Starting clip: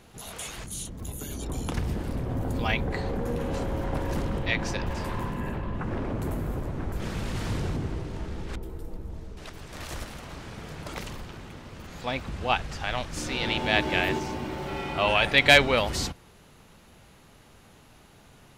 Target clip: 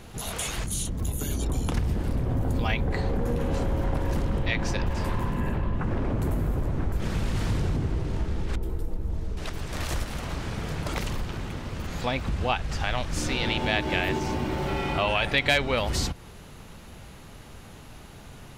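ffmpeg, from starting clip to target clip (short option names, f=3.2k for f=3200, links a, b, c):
-af "lowshelf=f=120:g=6.5,acompressor=threshold=-32dB:ratio=2.5,volume=6.5dB"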